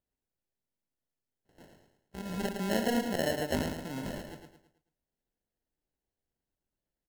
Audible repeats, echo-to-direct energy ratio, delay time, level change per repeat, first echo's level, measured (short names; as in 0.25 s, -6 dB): 4, -5.0 dB, 0.109 s, -8.0 dB, -6.0 dB